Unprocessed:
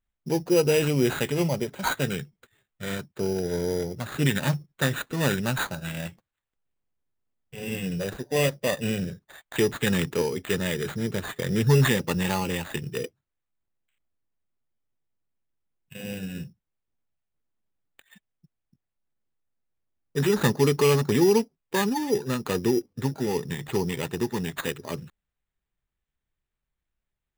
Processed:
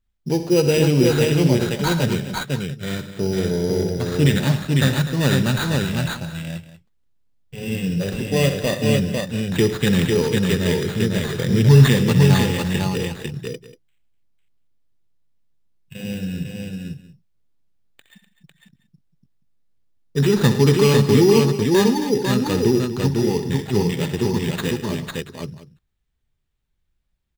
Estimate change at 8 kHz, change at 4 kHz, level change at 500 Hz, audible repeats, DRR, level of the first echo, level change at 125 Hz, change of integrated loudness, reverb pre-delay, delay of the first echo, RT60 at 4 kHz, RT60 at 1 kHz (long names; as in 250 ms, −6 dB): +4.5 dB, +7.0 dB, +6.0 dB, 6, no reverb audible, −12.0 dB, +10.0 dB, +7.0 dB, no reverb audible, 64 ms, no reverb audible, no reverb audible